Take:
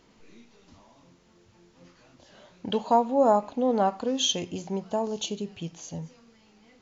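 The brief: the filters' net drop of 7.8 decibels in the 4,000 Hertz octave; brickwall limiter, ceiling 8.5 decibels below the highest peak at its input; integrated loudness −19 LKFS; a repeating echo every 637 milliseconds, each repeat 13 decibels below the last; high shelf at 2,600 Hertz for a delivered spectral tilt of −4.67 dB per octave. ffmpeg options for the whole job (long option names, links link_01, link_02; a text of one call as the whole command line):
ffmpeg -i in.wav -af "highshelf=frequency=2600:gain=-4.5,equalizer=frequency=4000:width_type=o:gain=-7,alimiter=limit=-19dB:level=0:latency=1,aecho=1:1:637|1274|1911:0.224|0.0493|0.0108,volume=12dB" out.wav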